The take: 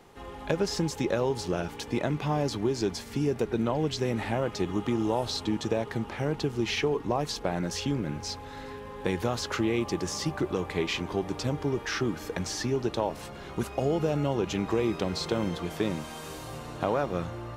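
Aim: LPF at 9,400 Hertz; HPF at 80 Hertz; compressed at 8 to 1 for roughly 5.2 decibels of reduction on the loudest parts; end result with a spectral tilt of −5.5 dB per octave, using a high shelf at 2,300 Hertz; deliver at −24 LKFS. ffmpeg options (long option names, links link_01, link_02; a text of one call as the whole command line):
ffmpeg -i in.wav -af "highpass=80,lowpass=9400,highshelf=frequency=2300:gain=-7.5,acompressor=threshold=-28dB:ratio=8,volume=11dB" out.wav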